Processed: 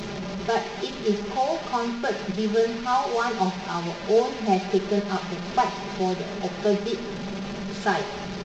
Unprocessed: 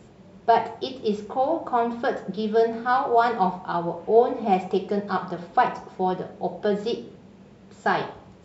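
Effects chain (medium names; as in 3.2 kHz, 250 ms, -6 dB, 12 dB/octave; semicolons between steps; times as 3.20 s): one-bit delta coder 32 kbps, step -26 dBFS; peaking EQ 1.1 kHz -2.5 dB; comb 5 ms, depth 70%; trim -2.5 dB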